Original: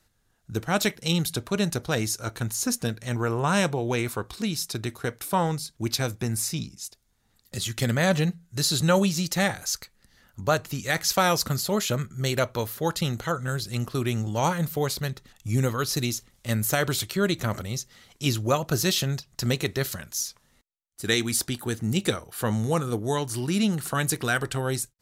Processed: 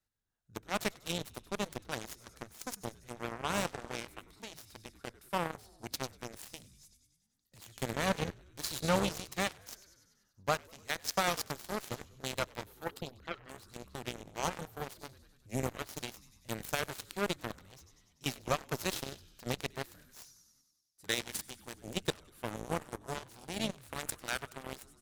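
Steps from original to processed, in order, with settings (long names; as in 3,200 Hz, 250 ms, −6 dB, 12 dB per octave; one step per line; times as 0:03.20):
0:12.84–0:13.49: spectral envelope exaggerated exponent 2
echo with shifted repeats 97 ms, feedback 63%, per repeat −51 Hz, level −11 dB
harmonic generator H 7 −15 dB, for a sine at −8 dBFS
level −8.5 dB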